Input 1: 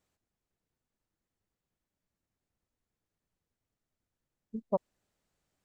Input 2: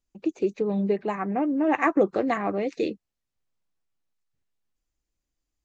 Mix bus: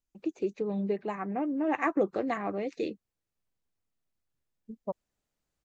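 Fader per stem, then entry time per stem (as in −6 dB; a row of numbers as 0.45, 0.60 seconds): −5.0, −6.0 decibels; 0.15, 0.00 seconds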